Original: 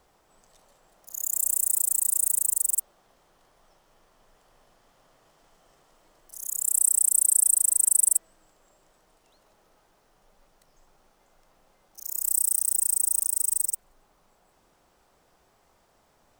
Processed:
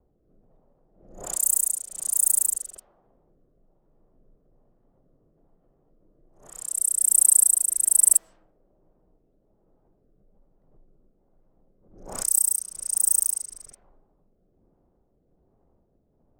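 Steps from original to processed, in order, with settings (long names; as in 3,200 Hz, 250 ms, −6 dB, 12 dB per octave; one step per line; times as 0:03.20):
rotating-speaker cabinet horn 1.2 Hz
low-pass that shuts in the quiet parts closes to 360 Hz, open at −22.5 dBFS
background raised ahead of every attack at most 79 dB per second
level +5 dB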